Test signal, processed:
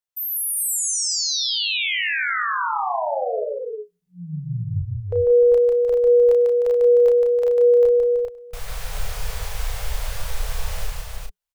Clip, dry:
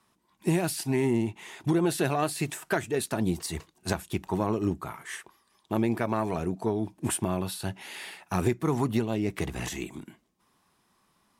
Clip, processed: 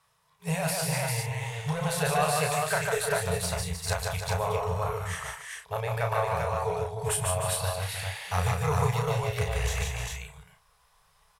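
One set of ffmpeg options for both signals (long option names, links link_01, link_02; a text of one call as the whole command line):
ffmpeg -i in.wav -filter_complex "[0:a]aecho=1:1:100|147|174|305|396:0.106|0.708|0.224|0.376|0.708,asubboost=boost=7:cutoff=54,afftfilt=real='re*(1-between(b*sr/4096,180,410))':imag='im*(1-between(b*sr/4096,180,410))':win_size=4096:overlap=0.75,asplit=2[link_01][link_02];[link_02]adelay=33,volume=-5dB[link_03];[link_01][link_03]amix=inputs=2:normalize=0" out.wav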